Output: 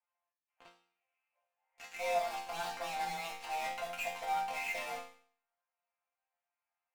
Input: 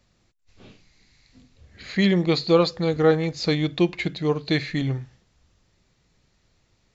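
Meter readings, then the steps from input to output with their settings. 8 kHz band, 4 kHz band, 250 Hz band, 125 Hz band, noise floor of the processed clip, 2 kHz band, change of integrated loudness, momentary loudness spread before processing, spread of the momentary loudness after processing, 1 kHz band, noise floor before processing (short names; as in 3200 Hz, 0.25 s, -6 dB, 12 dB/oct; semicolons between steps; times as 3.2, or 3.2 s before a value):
n/a, -15.5 dB, -36.0 dB, -36.5 dB, under -85 dBFS, -9.0 dB, -15.0 dB, 7 LU, 9 LU, -2.0 dB, -67 dBFS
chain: Wiener smoothing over 9 samples; mistuned SSB +330 Hz 330–2600 Hz; auto swell 0.164 s; in parallel at -4 dB: fuzz box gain 47 dB, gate -47 dBFS; on the sum: resonator bank F3 sus4, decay 0.52 s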